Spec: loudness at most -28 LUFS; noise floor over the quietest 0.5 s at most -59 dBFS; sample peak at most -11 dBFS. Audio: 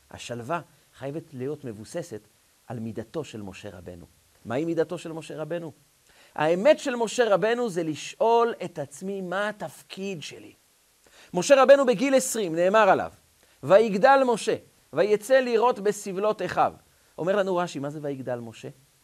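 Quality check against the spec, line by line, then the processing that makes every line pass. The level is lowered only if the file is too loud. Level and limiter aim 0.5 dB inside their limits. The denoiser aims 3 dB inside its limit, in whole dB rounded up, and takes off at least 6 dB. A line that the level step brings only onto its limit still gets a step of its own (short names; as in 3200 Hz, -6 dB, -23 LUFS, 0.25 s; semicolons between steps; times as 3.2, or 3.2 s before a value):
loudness -24.0 LUFS: fail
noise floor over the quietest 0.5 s -63 dBFS: OK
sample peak -5.0 dBFS: fail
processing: gain -4.5 dB; limiter -11.5 dBFS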